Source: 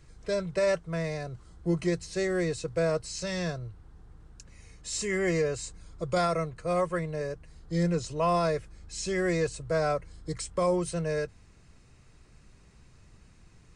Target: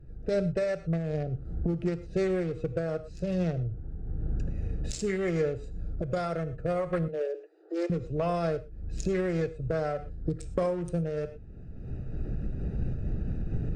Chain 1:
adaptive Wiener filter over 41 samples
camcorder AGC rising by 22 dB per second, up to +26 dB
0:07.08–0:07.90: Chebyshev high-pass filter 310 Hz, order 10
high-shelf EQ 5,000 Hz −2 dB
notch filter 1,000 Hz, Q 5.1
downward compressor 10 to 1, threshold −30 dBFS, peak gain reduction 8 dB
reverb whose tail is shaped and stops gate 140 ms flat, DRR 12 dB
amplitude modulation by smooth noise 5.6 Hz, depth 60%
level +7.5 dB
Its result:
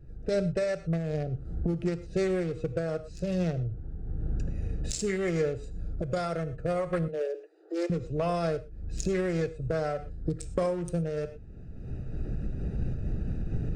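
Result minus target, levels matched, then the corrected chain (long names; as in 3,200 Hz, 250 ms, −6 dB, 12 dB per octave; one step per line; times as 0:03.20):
8,000 Hz band +5.0 dB
adaptive Wiener filter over 41 samples
camcorder AGC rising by 22 dB per second, up to +26 dB
0:07.08–0:07.90: Chebyshev high-pass filter 310 Hz, order 10
high-shelf EQ 5,000 Hz −10 dB
notch filter 1,000 Hz, Q 5.1
downward compressor 10 to 1, threshold −30 dBFS, peak gain reduction 8 dB
reverb whose tail is shaped and stops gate 140 ms flat, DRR 12 dB
amplitude modulation by smooth noise 5.6 Hz, depth 60%
level +7.5 dB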